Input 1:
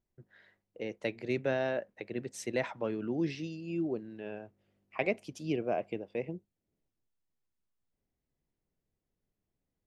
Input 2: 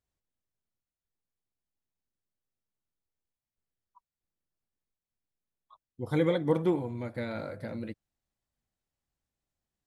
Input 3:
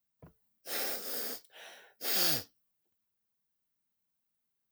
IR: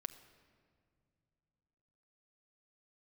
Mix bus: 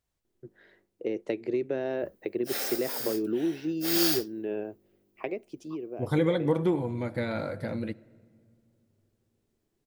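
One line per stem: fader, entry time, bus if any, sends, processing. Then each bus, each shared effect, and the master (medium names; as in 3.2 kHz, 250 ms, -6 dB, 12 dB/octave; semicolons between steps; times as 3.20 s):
+1.0 dB, 0.25 s, no send, peaking EQ 360 Hz +14 dB 1 oct; compression 6:1, threshold -27 dBFS, peak gain reduction 11.5 dB; auto duck -8 dB, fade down 0.90 s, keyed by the second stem
+1.5 dB, 0.00 s, send -3 dB, compression 2:1, threshold -29 dBFS, peak gain reduction 5.5 dB
+2.5 dB, 1.80 s, no send, none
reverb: on, pre-delay 6 ms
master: none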